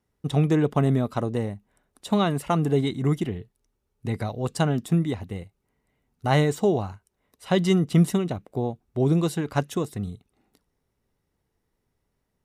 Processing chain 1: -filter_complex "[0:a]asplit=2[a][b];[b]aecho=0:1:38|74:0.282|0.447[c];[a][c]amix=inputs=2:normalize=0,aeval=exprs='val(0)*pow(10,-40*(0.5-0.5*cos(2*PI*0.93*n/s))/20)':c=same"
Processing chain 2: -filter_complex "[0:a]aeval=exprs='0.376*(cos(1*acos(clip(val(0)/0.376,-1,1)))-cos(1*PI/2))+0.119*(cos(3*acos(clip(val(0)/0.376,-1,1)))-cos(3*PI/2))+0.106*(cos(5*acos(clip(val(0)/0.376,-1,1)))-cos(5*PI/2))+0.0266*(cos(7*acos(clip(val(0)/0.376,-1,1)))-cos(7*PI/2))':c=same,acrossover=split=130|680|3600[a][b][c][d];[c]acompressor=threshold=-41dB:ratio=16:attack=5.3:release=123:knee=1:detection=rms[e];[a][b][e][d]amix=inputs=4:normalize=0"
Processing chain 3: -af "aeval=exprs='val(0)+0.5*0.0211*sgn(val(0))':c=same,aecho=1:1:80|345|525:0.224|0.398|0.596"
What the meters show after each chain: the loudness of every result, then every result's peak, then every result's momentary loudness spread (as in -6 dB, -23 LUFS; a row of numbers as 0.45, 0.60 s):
-28.5, -27.0, -23.0 LUFS; -9.5, -13.5, -8.0 dBFS; 18, 12, 18 LU